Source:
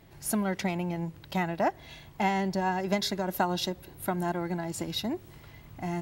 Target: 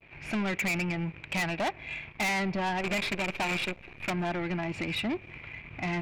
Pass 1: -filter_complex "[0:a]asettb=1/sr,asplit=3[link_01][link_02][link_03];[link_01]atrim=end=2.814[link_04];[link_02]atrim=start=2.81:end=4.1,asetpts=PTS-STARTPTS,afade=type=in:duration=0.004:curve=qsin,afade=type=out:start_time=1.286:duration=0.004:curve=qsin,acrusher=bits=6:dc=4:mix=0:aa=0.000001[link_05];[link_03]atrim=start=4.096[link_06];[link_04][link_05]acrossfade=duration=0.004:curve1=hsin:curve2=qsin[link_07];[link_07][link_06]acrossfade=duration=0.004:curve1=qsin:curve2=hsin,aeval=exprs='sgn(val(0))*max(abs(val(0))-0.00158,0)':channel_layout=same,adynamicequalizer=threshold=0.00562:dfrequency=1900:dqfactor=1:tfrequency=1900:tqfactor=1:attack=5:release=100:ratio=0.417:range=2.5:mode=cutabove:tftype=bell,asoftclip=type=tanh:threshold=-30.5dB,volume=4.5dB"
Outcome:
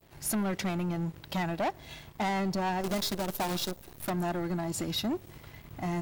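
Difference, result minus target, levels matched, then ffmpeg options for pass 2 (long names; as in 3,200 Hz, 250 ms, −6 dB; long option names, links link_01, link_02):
2,000 Hz band −8.0 dB
-filter_complex "[0:a]asettb=1/sr,asplit=3[link_01][link_02][link_03];[link_01]atrim=end=2.814[link_04];[link_02]atrim=start=2.81:end=4.1,asetpts=PTS-STARTPTS,afade=type=in:duration=0.004:curve=qsin,afade=type=out:start_time=1.286:duration=0.004:curve=qsin,acrusher=bits=6:dc=4:mix=0:aa=0.000001[link_05];[link_03]atrim=start=4.096[link_06];[link_04][link_05]acrossfade=duration=0.004:curve1=hsin:curve2=qsin[link_07];[link_07][link_06]acrossfade=duration=0.004:curve1=qsin:curve2=hsin,aeval=exprs='sgn(val(0))*max(abs(val(0))-0.00158,0)':channel_layout=same,adynamicequalizer=threshold=0.00562:dfrequency=1900:dqfactor=1:tfrequency=1900:tqfactor=1:attack=5:release=100:ratio=0.417:range=2.5:mode=cutabove:tftype=bell,lowpass=frequency=2400:width_type=q:width=13,asoftclip=type=tanh:threshold=-30.5dB,volume=4.5dB"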